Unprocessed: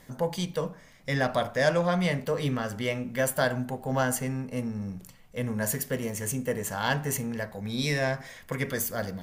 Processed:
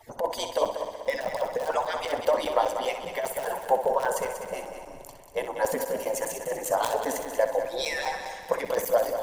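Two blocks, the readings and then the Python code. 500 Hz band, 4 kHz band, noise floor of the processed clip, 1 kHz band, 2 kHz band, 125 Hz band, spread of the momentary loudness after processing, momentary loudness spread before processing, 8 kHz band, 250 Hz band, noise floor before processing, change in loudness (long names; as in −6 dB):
+4.0 dB, −0.5 dB, −44 dBFS, +5.5 dB, −3.0 dB, −20.0 dB, 9 LU, 9 LU, −2.0 dB, −10.5 dB, −53 dBFS, +1.0 dB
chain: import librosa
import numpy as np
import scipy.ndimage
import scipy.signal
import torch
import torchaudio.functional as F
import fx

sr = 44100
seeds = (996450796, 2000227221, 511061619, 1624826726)

y = fx.hpss_only(x, sr, part='percussive')
y = (np.mod(10.0 ** (19.0 / 20.0) * y + 1.0, 2.0) - 1.0) / 10.0 ** (19.0 / 20.0)
y = fx.over_compress(y, sr, threshold_db=-33.0, ratio=-0.5)
y = fx.band_shelf(y, sr, hz=700.0, db=13.5, octaves=1.3)
y = fx.echo_heads(y, sr, ms=63, heads='first and third', feedback_pct=60, wet_db=-9.5)
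y = fx.buffer_crackle(y, sr, first_s=0.65, period_s=0.2, block=256, kind='zero')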